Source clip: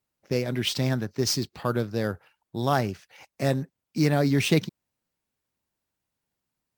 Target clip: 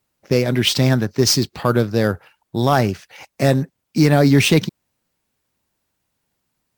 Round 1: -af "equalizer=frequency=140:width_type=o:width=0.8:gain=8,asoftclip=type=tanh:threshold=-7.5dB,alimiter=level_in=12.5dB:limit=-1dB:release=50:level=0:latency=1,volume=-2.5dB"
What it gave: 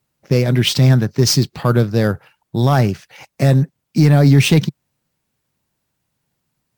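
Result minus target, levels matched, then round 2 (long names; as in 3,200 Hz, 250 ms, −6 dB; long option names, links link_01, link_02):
125 Hz band +3.5 dB
-af "asoftclip=type=tanh:threshold=-7.5dB,alimiter=level_in=12.5dB:limit=-1dB:release=50:level=0:latency=1,volume=-2.5dB"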